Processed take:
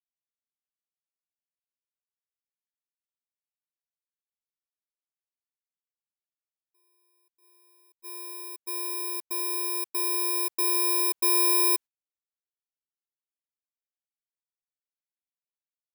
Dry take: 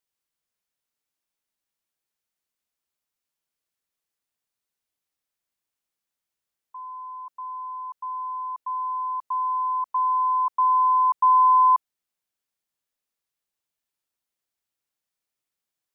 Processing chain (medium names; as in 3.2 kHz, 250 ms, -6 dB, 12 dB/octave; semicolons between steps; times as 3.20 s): bit-reversed sample order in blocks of 32 samples; gate -31 dBFS, range -30 dB; peaking EQ 990 Hz +2.5 dB; in parallel at -5 dB: saturation -28 dBFS, distortion -6 dB; on the sum: trim -7 dB